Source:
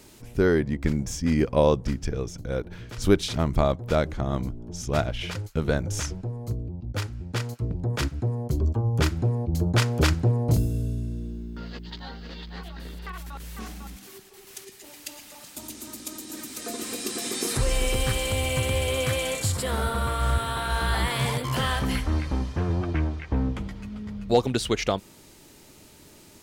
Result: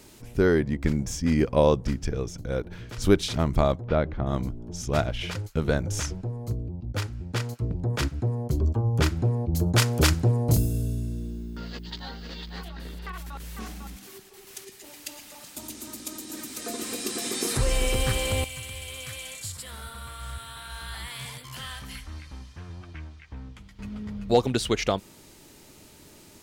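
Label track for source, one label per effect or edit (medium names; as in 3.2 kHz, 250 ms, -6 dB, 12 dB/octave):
3.810000	4.270000	distance through air 320 m
9.560000	12.650000	treble shelf 6.2 kHz +10.5 dB
18.440000	23.790000	amplifier tone stack bass-middle-treble 5-5-5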